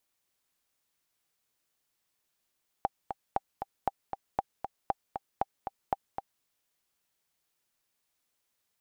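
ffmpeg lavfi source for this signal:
-f lavfi -i "aevalsrc='pow(10,(-13.5-7.5*gte(mod(t,2*60/234),60/234))/20)*sin(2*PI*789*mod(t,60/234))*exp(-6.91*mod(t,60/234)/0.03)':d=3.58:s=44100"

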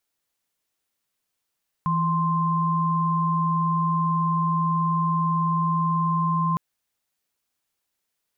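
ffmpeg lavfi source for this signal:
-f lavfi -i "aevalsrc='0.075*(sin(2*PI*164.81*t)+sin(2*PI*1046.5*t))':d=4.71:s=44100"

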